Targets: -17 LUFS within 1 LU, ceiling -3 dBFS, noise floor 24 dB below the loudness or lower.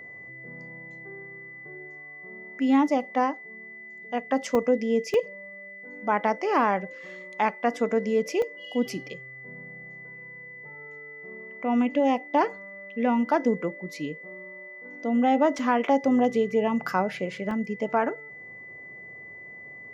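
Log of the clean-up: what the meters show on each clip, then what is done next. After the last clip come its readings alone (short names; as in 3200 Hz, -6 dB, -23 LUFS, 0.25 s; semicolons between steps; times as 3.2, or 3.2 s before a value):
dropouts 5; longest dropout 1.8 ms; steady tone 2000 Hz; tone level -41 dBFS; loudness -26.0 LUFS; peak -10.5 dBFS; loudness target -17.0 LUFS
-> interpolate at 4.55/5.14/8.42/15.59/17.51, 1.8 ms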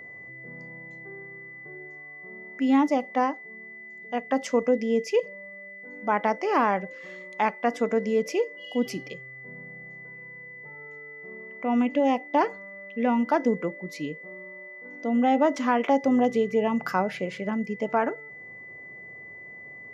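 dropouts 0; steady tone 2000 Hz; tone level -41 dBFS
-> notch 2000 Hz, Q 30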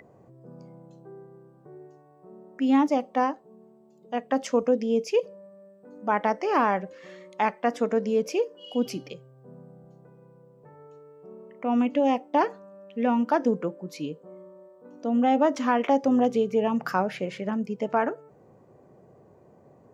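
steady tone none; loudness -26.0 LUFS; peak -10.5 dBFS; loudness target -17.0 LUFS
-> gain +9 dB; limiter -3 dBFS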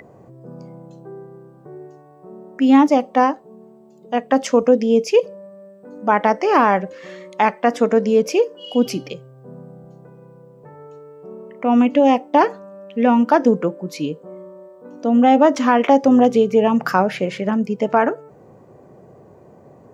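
loudness -17.0 LUFS; peak -3.0 dBFS; noise floor -47 dBFS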